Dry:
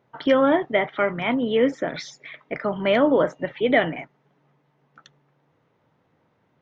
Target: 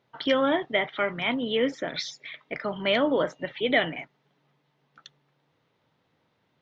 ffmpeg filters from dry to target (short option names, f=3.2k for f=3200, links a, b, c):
-af "equalizer=f=4k:w=0.86:g=11.5,volume=-6dB"